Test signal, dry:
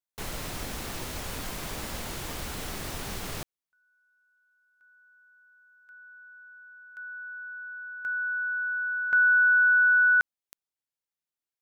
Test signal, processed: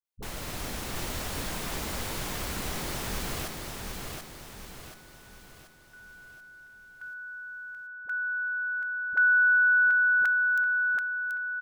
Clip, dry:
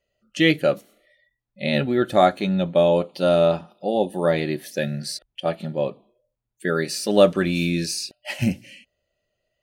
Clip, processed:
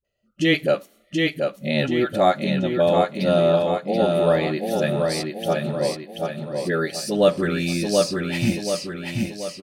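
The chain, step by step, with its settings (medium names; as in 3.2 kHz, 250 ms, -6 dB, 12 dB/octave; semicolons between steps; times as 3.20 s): phase dispersion highs, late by 47 ms, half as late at 390 Hz; on a send: feedback delay 732 ms, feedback 46%, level -4 dB; on the sum: level rider gain up to 3 dB; speakerphone echo 80 ms, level -28 dB; trim -2.5 dB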